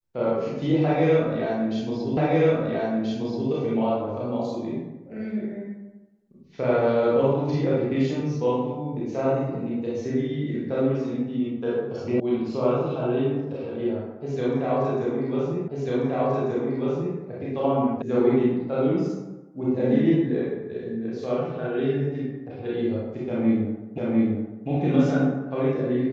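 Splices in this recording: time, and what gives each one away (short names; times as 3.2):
2.17 repeat of the last 1.33 s
12.2 sound cut off
15.68 repeat of the last 1.49 s
18.02 sound cut off
23.98 repeat of the last 0.7 s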